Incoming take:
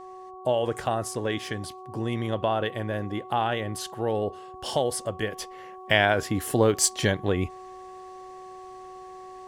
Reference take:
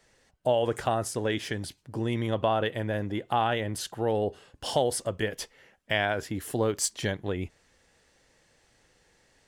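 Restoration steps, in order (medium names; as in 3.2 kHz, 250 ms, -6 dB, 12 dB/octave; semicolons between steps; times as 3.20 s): de-hum 372.7 Hz, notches 3; gain correction -6 dB, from 5.51 s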